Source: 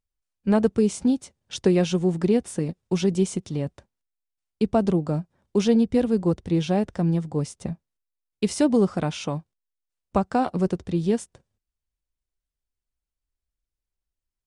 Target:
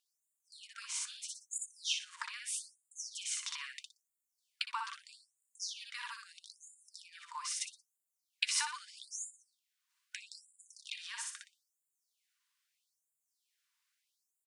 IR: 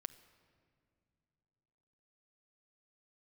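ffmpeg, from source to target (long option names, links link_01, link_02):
-filter_complex "[0:a]asplit=2[link_01][link_02];[link_02]aecho=0:1:60|120|180:0.631|0.158|0.0394[link_03];[link_01][link_03]amix=inputs=2:normalize=0,acompressor=threshold=-32dB:ratio=10,highshelf=frequency=6500:gain=-8,bandreject=frequency=1300:width=15,afftfilt=real='re*gte(b*sr/1024,890*pow(6900/890,0.5+0.5*sin(2*PI*0.78*pts/sr)))':imag='im*gte(b*sr/1024,890*pow(6900/890,0.5+0.5*sin(2*PI*0.78*pts/sr)))':win_size=1024:overlap=0.75,volume=14.5dB"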